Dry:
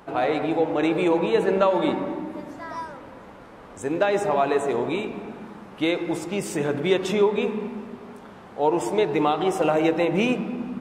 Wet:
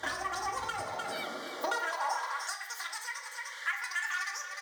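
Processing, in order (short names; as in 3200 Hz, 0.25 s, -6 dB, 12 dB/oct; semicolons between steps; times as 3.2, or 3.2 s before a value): high shelf 7300 Hz -9.5 dB; in parallel at -11 dB: sample-rate reducer 8700 Hz, jitter 20%; on the sum: Butterworth band-stop 1100 Hz, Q 2.7; bell 3700 Hz +8 dB 2.2 oct; speed mistake 33 rpm record played at 78 rpm; tube stage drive 11 dB, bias 0.7; echo 0.302 s -11.5 dB; compressor 16:1, threshold -34 dBFS, peak gain reduction 18.5 dB; high-pass sweep 69 Hz -> 1800 Hz, 0.51–2.58; on a send at -1.5 dB: reverb RT60 0.50 s, pre-delay 4 ms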